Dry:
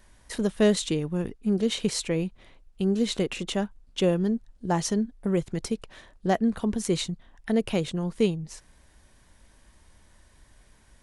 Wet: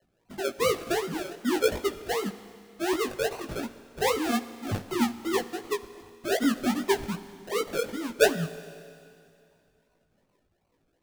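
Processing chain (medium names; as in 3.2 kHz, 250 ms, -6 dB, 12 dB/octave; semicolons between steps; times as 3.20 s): formants replaced by sine waves; decimation with a swept rate 36×, swing 60% 2.6 Hz; chorus 1.1 Hz, delay 17.5 ms, depth 2.8 ms; Schroeder reverb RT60 2.5 s, combs from 30 ms, DRR 14 dB; trim +1 dB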